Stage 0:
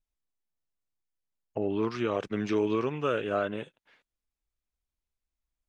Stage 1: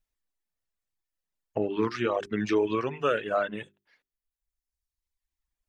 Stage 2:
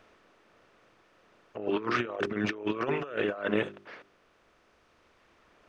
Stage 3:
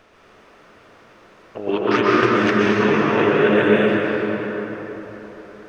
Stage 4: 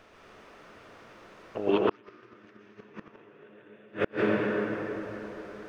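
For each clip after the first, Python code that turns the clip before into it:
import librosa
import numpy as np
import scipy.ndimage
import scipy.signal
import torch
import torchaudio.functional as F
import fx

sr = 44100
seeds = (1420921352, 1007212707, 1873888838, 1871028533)

y1 = fx.dereverb_blind(x, sr, rt60_s=1.5)
y1 = fx.peak_eq(y1, sr, hz=1800.0, db=5.0, octaves=0.25)
y1 = fx.hum_notches(y1, sr, base_hz=50, count=8)
y1 = F.gain(torch.from_numpy(y1), 4.0).numpy()
y2 = fx.bin_compress(y1, sr, power=0.6)
y2 = fx.bass_treble(y2, sr, bass_db=-4, treble_db=-11)
y2 = fx.over_compress(y2, sr, threshold_db=-30.0, ratio=-0.5)
y3 = fx.rev_plate(y2, sr, seeds[0], rt60_s=4.3, hf_ratio=0.6, predelay_ms=110, drr_db=-6.5)
y3 = F.gain(torch.from_numpy(y3), 7.0).numpy()
y4 = fx.gate_flip(y3, sr, shuts_db=-8.0, range_db=-35)
y4 = F.gain(torch.from_numpy(y4), -3.0).numpy()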